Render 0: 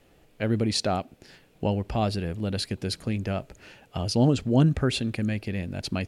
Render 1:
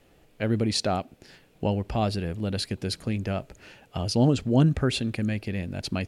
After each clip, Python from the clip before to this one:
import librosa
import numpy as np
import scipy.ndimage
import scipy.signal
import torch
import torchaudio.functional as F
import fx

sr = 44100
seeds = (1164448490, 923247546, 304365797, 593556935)

y = x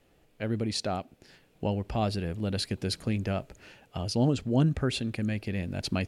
y = fx.rider(x, sr, range_db=10, speed_s=2.0)
y = y * librosa.db_to_amplitude(-3.5)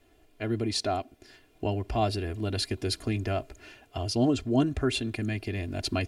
y = x + 0.79 * np.pad(x, (int(2.9 * sr / 1000.0), 0))[:len(x)]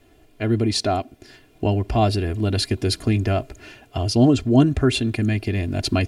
y = fx.peak_eq(x, sr, hz=150.0, db=5.5, octaves=1.6)
y = y * librosa.db_to_amplitude(6.5)